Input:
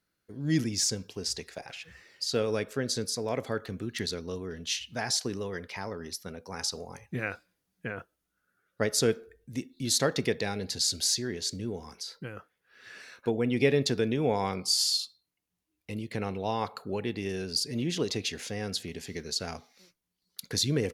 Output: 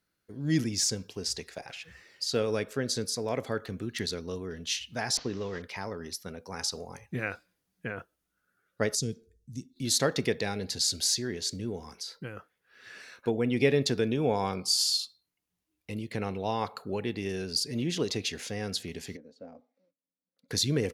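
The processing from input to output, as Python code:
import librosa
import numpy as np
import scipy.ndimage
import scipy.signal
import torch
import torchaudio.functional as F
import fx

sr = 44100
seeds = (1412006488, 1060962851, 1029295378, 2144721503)

y = fx.delta_mod(x, sr, bps=32000, step_db=-45.5, at=(5.17, 5.62))
y = fx.curve_eq(y, sr, hz=(170.0, 820.0, 1400.0, 2500.0, 4100.0, 6300.0, 13000.0), db=(0, -23, -27, -17, -7, 0, -10), at=(8.95, 9.76))
y = fx.notch(y, sr, hz=2000.0, q=6.1, at=(14.11, 14.94))
y = fx.double_bandpass(y, sr, hz=380.0, octaves=0.91, at=(19.15, 20.48), fade=0.02)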